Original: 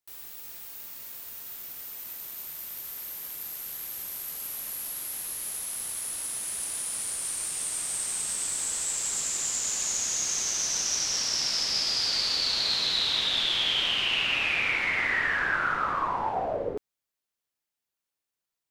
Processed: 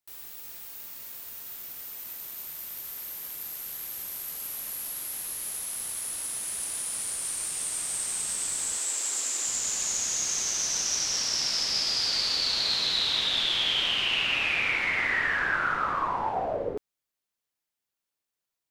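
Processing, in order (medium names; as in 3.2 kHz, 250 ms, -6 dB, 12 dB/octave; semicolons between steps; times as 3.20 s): 8.77–9.47 s: steep high-pass 240 Hz 48 dB/octave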